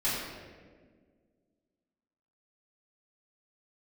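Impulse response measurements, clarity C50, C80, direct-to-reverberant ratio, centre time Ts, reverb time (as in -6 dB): 0.0 dB, 1.5 dB, -11.5 dB, 93 ms, 1.7 s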